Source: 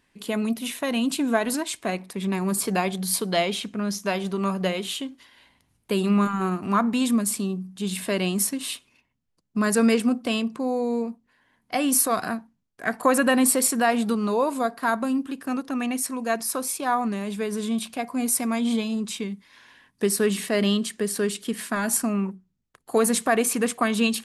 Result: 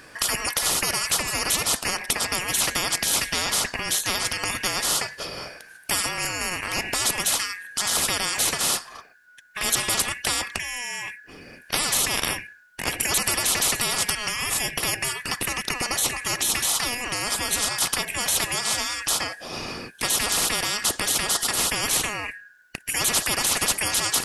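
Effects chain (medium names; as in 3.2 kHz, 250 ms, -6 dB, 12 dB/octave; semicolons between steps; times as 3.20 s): four frequency bands reordered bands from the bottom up 2143; spectrum-flattening compressor 10:1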